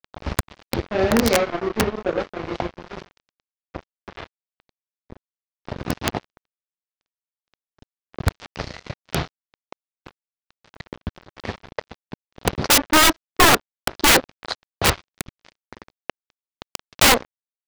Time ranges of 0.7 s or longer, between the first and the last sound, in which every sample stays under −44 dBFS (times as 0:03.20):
0:06.37–0:07.54